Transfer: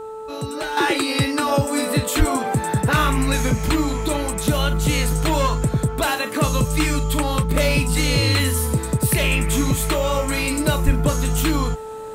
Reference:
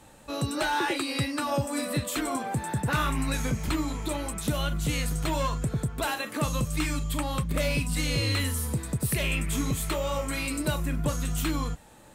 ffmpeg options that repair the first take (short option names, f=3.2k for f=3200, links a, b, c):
-filter_complex "[0:a]bandreject=f=438.7:t=h:w=4,bandreject=f=877.4:t=h:w=4,bandreject=f=1.3161k:t=h:w=4,asplit=3[a][b][c];[a]afade=t=out:st=2.18:d=0.02[d];[b]highpass=f=140:w=0.5412,highpass=f=140:w=1.3066,afade=t=in:st=2.18:d=0.02,afade=t=out:st=2.3:d=0.02[e];[c]afade=t=in:st=2.3:d=0.02[f];[d][e][f]amix=inputs=3:normalize=0,asplit=3[g][h][i];[g]afade=t=out:st=10.85:d=0.02[j];[h]highpass=f=140:w=0.5412,highpass=f=140:w=1.3066,afade=t=in:st=10.85:d=0.02,afade=t=out:st=10.97:d=0.02[k];[i]afade=t=in:st=10.97:d=0.02[l];[j][k][l]amix=inputs=3:normalize=0,asetnsamples=n=441:p=0,asendcmd='0.77 volume volume -8.5dB',volume=0dB"